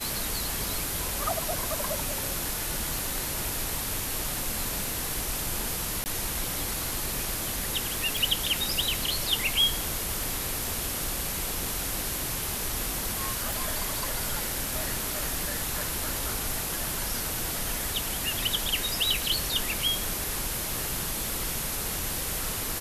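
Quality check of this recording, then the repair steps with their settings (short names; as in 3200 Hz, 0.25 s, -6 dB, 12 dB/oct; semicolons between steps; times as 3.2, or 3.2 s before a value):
2.99 pop
6.04–6.06 gap 19 ms
8.17 pop
13.53 pop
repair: de-click; interpolate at 6.04, 19 ms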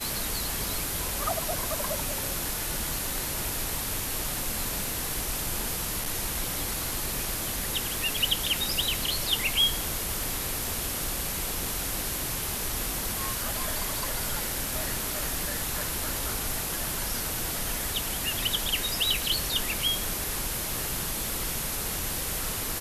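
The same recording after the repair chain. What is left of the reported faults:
2.99 pop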